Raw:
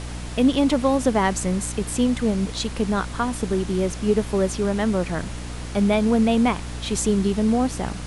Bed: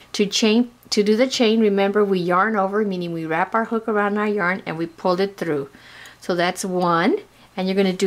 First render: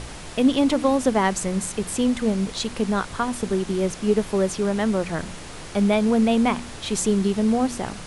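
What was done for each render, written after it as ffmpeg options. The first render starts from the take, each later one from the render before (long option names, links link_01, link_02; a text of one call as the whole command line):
ffmpeg -i in.wav -af "bandreject=frequency=60:width_type=h:width=4,bandreject=frequency=120:width_type=h:width=4,bandreject=frequency=180:width_type=h:width=4,bandreject=frequency=240:width_type=h:width=4,bandreject=frequency=300:width_type=h:width=4" out.wav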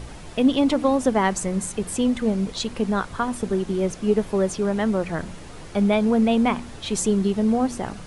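ffmpeg -i in.wav -af "afftdn=noise_reduction=7:noise_floor=-38" out.wav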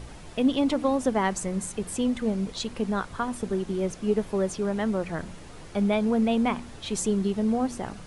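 ffmpeg -i in.wav -af "volume=-4.5dB" out.wav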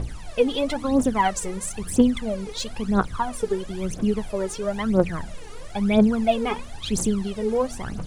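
ffmpeg -i in.wav -af "aphaser=in_gain=1:out_gain=1:delay=2.5:decay=0.78:speed=1:type=triangular" out.wav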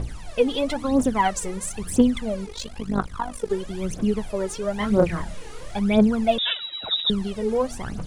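ffmpeg -i in.wav -filter_complex "[0:a]asplit=3[link_01][link_02][link_03];[link_01]afade=type=out:start_time=2.45:duration=0.02[link_04];[link_02]tremolo=f=50:d=0.788,afade=type=in:start_time=2.45:duration=0.02,afade=type=out:start_time=3.49:duration=0.02[link_05];[link_03]afade=type=in:start_time=3.49:duration=0.02[link_06];[link_04][link_05][link_06]amix=inputs=3:normalize=0,asettb=1/sr,asplit=3[link_07][link_08][link_09];[link_07]atrim=end=4.774[link_10];[link_08]atrim=start=4.77:end=5.79,asetpts=PTS-STARTPTS,afade=type=in:duration=0.004:curve=qsin,afade=type=out:start_time=1.016:duration=0.004:curve=qsin,asplit=2[link_11][link_12];[link_12]adelay=29,volume=-3dB[link_13];[link_11][link_13]amix=inputs=2:normalize=0,atrim=end_sample=44982[link_14];[link_09]atrim=start=5.786[link_15];[link_10][link_14]acrossfade=duration=0.004:curve1=hsin:curve2=qsin[link_16];[link_16][link_15]acrossfade=duration=0.004:curve1=qsin:curve2=hsin,asettb=1/sr,asplit=3[link_17][link_18][link_19];[link_17]atrim=end=6.384[link_20];[link_18]atrim=start=6.38:end=7.1,asetpts=PTS-STARTPTS,afade=type=in:duration=0.004:curve=qsin,afade=type=out:start_time=0.716:duration=0.004:curve=qsin,lowpass=frequency=3300:width_type=q:width=0.5098,lowpass=frequency=3300:width_type=q:width=0.6013,lowpass=frequency=3300:width_type=q:width=0.9,lowpass=frequency=3300:width_type=q:width=2.563,afreqshift=-3900[link_21];[link_19]atrim=start=7.096[link_22];[link_20][link_21]acrossfade=duration=0.004:curve1=hsin:curve2=qsin[link_23];[link_23][link_22]acrossfade=duration=0.004:curve1=qsin:curve2=hsin" out.wav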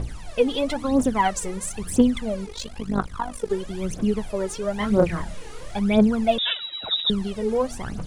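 ffmpeg -i in.wav -af anull out.wav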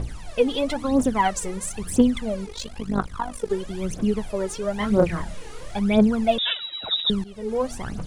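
ffmpeg -i in.wav -filter_complex "[0:a]asplit=2[link_01][link_02];[link_01]atrim=end=7.24,asetpts=PTS-STARTPTS,afade=type=out:start_time=7.236:duration=0.004:curve=hsin:silence=0.158489[link_03];[link_02]atrim=start=7.24,asetpts=PTS-STARTPTS,afade=type=in:duration=0.44:silence=0.158489[link_04];[link_03][link_04]concat=n=2:v=0:a=1" out.wav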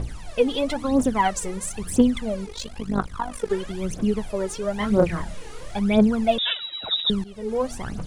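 ffmpeg -i in.wav -filter_complex "[0:a]asettb=1/sr,asplit=3[link_01][link_02][link_03];[link_01]atrim=end=3.314[link_04];[link_02]atrim=start=3.31:end=3.72,asetpts=PTS-STARTPTS,afade=type=in:duration=0.004:curve=qsin,afade=type=out:start_time=0.406:duration=0.004:curve=qsin,equalizer=frequency=1700:width_type=o:width=1.8:gain=6[link_05];[link_03]atrim=start=3.716[link_06];[link_04][link_05]acrossfade=duration=0.004:curve1=hsin:curve2=qsin[link_07];[link_07][link_06]acrossfade=duration=0.004:curve1=qsin:curve2=hsin" out.wav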